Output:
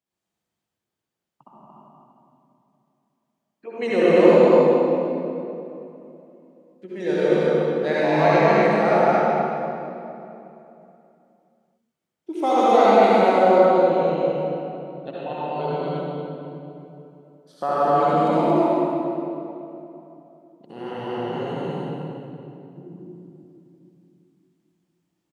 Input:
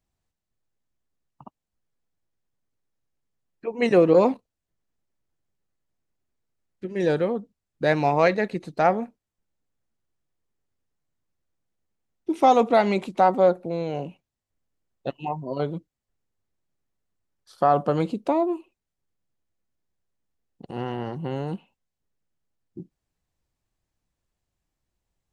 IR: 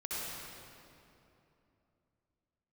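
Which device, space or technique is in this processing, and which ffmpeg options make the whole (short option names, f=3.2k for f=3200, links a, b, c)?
stadium PA: -filter_complex "[0:a]asettb=1/sr,asplit=3[a][b][c];[a]atrim=end=13.764[d];[b]atrim=start=13.76:end=15.48,asetpts=PTS-STARTPTS,afade=t=in:d=0.004:c=qsin,afade=t=out:st=1.716:d=0.004:c=qsin,lowpass=5.1k[e];[c]atrim=start=15.476[f];[d][e]acrossfade=d=0.004:c1=hsin:c2=qsin[g];[g][f]acrossfade=d=0.004:c1=qsin:c2=hsin,highpass=190,equalizer=f=3.2k:t=o:w=0.23:g=4,aecho=1:1:157.4|227.4:0.282|0.794[h];[1:a]atrim=start_sample=2205[i];[h][i]afir=irnorm=-1:irlink=0,volume=-1dB"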